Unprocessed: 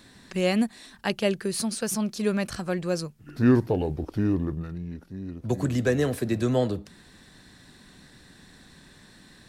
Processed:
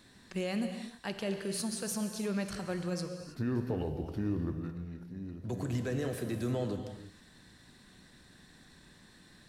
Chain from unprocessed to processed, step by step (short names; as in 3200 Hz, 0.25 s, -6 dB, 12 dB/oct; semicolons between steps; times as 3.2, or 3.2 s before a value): limiter -19 dBFS, peak gain reduction 9 dB; non-linear reverb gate 0.35 s flat, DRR 6 dB; gain -7 dB